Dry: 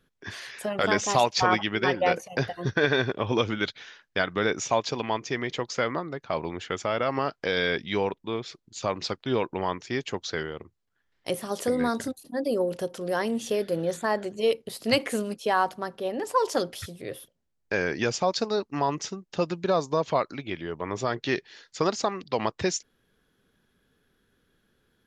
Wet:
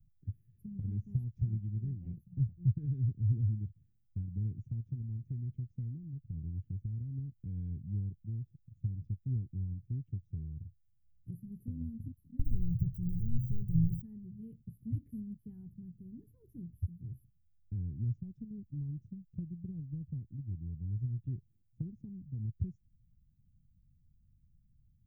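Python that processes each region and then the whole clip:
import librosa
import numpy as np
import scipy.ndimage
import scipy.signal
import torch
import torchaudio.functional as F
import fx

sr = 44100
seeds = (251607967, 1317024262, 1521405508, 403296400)

y = fx.chain(x, sr, fx.leveller(passes=2),
    fx.low_shelf_res(hz=170.0, db=10.5, q=3.0), at=(12.39, 14.02))
y = scipy.signal.sosfilt(scipy.signal.cheby2(4, 70, [560.0, 8300.0], 'bandstop', fs=sr, output='sos'), y)
y = fx.dynamic_eq(y, sr, hz=160.0, q=1.4, threshold_db=-52.0, ratio=4.0, max_db=-6)
y = F.gain(torch.from_numpy(y), 9.5).numpy()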